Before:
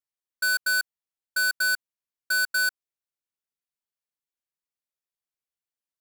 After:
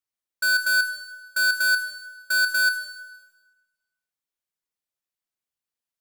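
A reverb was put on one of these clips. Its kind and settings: Schroeder reverb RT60 1.2 s, combs from 26 ms, DRR 7.5 dB; gain +1 dB

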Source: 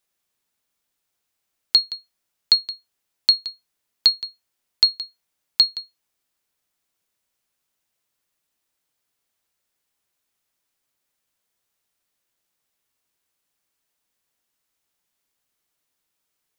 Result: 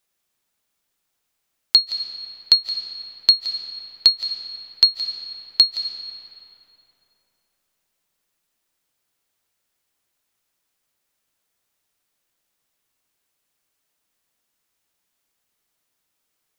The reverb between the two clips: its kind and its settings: digital reverb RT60 3.5 s, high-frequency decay 0.6×, pre-delay 0.12 s, DRR 7.5 dB; gain +2 dB

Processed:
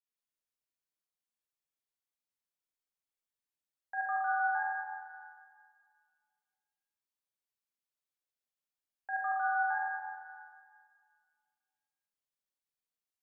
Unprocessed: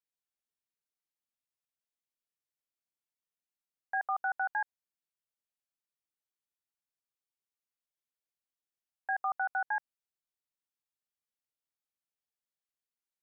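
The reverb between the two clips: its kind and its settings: Schroeder reverb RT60 2 s, combs from 30 ms, DRR -4 dB; gain -7.5 dB

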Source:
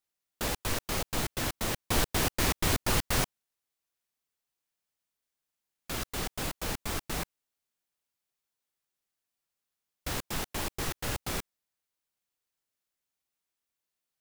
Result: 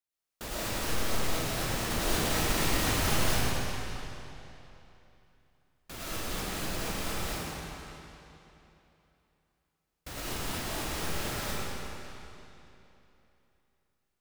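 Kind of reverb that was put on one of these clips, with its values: digital reverb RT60 3.1 s, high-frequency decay 0.9×, pre-delay 65 ms, DRR -9.5 dB; gain -8.5 dB

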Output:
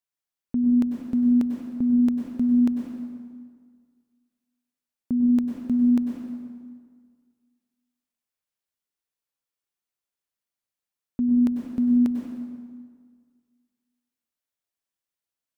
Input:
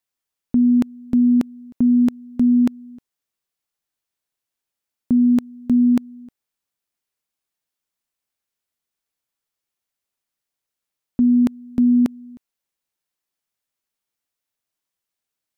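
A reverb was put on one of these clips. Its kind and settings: plate-style reverb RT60 1.8 s, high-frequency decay 0.7×, pre-delay 85 ms, DRR 1.5 dB; gain -8 dB

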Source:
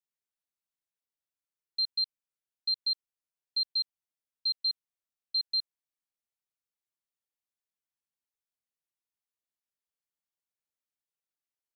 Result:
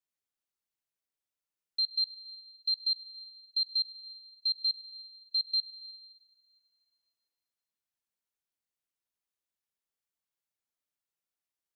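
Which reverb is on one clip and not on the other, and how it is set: plate-style reverb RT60 3.5 s, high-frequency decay 0.6×, DRR 11.5 dB

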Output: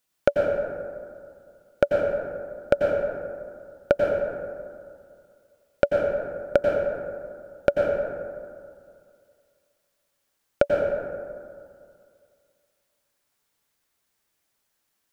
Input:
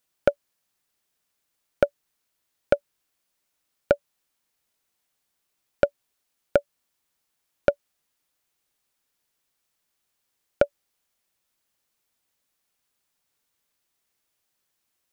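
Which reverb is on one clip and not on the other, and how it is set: plate-style reverb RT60 2.2 s, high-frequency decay 0.35×, pre-delay 80 ms, DRR -1 dB

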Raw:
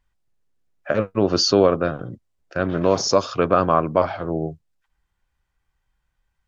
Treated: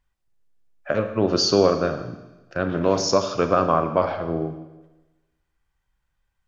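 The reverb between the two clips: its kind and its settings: Schroeder reverb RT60 1.1 s, combs from 28 ms, DRR 8 dB; gain -2 dB

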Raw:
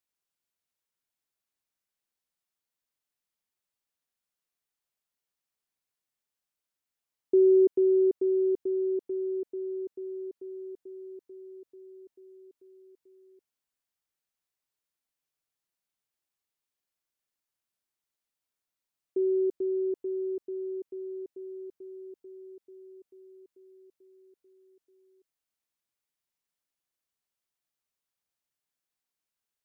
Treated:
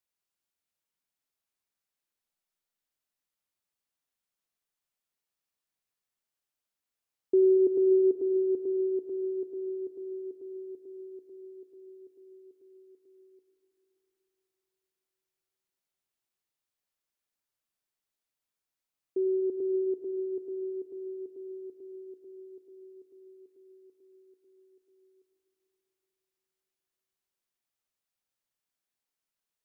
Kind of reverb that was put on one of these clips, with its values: digital reverb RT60 3.9 s, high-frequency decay 0.75×, pre-delay 30 ms, DRR 6 dB; gain -1.5 dB

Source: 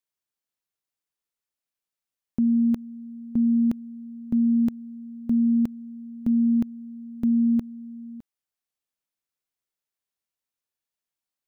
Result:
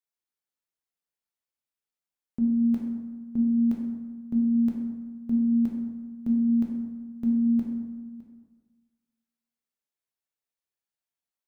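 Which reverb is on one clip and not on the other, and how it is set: plate-style reverb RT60 1.4 s, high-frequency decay 0.5×, DRR -1 dB; gain -7 dB

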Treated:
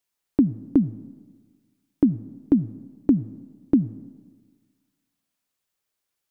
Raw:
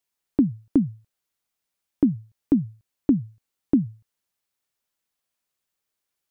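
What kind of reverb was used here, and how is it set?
digital reverb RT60 1.5 s, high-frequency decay 0.5×, pre-delay 35 ms, DRR 19 dB; gain +1 dB

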